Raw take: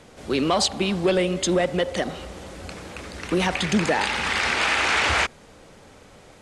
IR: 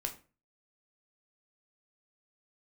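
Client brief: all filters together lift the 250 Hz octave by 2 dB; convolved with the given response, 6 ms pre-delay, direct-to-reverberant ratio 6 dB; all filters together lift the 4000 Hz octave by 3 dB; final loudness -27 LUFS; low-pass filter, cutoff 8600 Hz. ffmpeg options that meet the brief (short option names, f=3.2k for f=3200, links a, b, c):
-filter_complex "[0:a]lowpass=8.6k,equalizer=f=250:t=o:g=3,equalizer=f=4k:t=o:g=4,asplit=2[a][b];[1:a]atrim=start_sample=2205,adelay=6[c];[b][c]afir=irnorm=-1:irlink=0,volume=-6.5dB[d];[a][d]amix=inputs=2:normalize=0,volume=-7.5dB"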